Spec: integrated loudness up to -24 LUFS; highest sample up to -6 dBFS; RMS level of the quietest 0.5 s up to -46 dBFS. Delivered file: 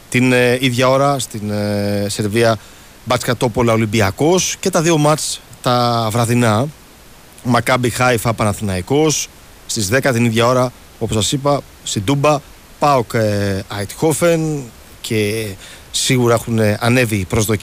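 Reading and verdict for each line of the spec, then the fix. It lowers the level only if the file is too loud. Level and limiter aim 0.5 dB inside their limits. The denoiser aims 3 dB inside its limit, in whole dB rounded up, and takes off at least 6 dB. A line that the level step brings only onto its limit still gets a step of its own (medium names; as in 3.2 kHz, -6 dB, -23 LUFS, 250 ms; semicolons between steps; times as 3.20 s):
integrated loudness -16.0 LUFS: fail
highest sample -4.0 dBFS: fail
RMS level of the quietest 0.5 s -41 dBFS: fail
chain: trim -8.5 dB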